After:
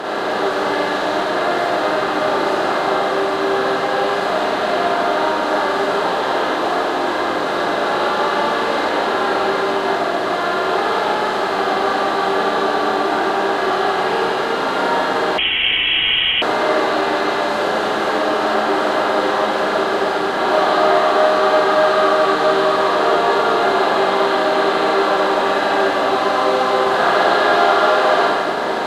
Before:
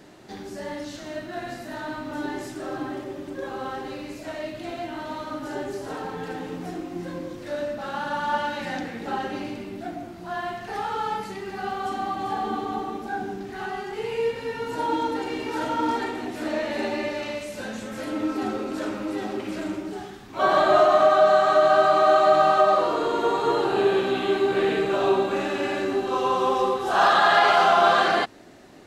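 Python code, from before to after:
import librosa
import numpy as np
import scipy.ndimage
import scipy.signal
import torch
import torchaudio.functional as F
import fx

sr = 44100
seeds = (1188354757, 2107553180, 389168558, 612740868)

y = fx.bin_compress(x, sr, power=0.2)
y = fx.rev_schroeder(y, sr, rt60_s=1.3, comb_ms=33, drr_db=-5.5)
y = fx.freq_invert(y, sr, carrier_hz=3600, at=(15.38, 16.42))
y = y * librosa.db_to_amplitude(-10.0)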